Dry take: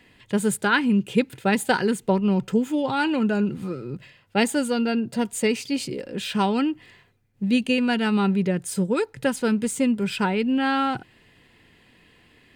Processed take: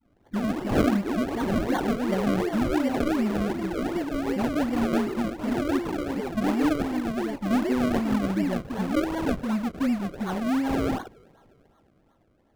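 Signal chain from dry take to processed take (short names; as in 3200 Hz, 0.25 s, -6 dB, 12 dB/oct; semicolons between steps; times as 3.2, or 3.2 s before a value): in parallel at -11.5 dB: fuzz box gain 42 dB, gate -45 dBFS; on the sum: tone controls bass 0 dB, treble -10 dB; fixed phaser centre 670 Hz, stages 8; on a send: thin delay 0.307 s, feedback 57%, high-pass 2400 Hz, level -14.5 dB; on the sum: echoes that change speed 0.114 s, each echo +3 st, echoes 3; dispersion highs, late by 60 ms, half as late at 610 Hz; decimation with a swept rate 34×, swing 100% 2.7 Hz; high shelf 2500 Hz -11.5 dB; gain -5.5 dB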